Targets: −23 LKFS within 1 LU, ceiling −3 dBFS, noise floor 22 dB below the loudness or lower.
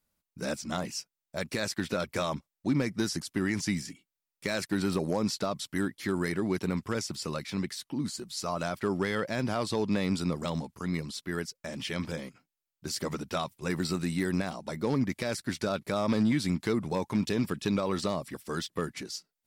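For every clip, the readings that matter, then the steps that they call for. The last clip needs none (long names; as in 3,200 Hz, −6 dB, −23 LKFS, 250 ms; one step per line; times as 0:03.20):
share of clipped samples 0.2%; peaks flattened at −19.0 dBFS; integrated loudness −32.0 LKFS; sample peak −19.0 dBFS; target loudness −23.0 LKFS
→ clipped peaks rebuilt −19 dBFS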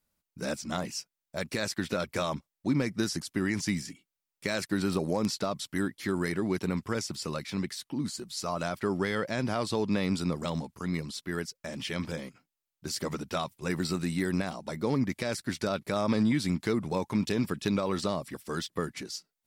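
share of clipped samples 0.0%; integrated loudness −32.0 LKFS; sample peak −12.5 dBFS; target loudness −23.0 LKFS
→ level +9 dB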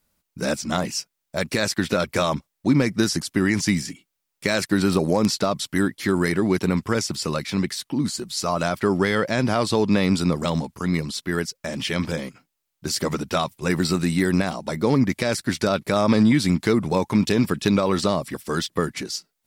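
integrated loudness −23.0 LKFS; sample peak −3.5 dBFS; background noise floor −79 dBFS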